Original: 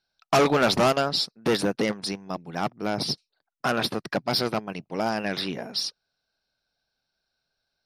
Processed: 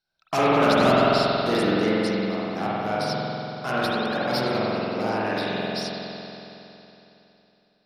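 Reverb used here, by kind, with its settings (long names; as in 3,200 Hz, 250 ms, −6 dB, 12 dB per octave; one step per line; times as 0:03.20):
spring reverb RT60 3.2 s, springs 46 ms, chirp 50 ms, DRR −8.5 dB
level −6 dB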